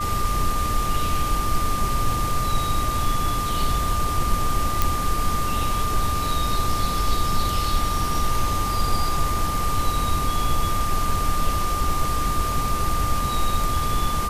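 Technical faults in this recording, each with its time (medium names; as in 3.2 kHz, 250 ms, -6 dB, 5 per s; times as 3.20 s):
whine 1.2 kHz -25 dBFS
4.82 s: pop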